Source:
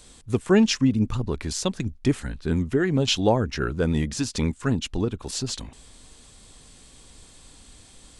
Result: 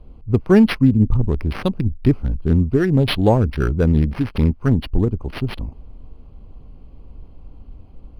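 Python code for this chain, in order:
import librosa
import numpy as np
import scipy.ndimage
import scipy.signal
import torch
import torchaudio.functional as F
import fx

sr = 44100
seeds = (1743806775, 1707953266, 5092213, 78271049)

y = fx.wiener(x, sr, points=25)
y = fx.low_shelf(y, sr, hz=110.0, db=11.5)
y = np.interp(np.arange(len(y)), np.arange(len(y))[::6], y[::6])
y = y * 10.0 ** (4.0 / 20.0)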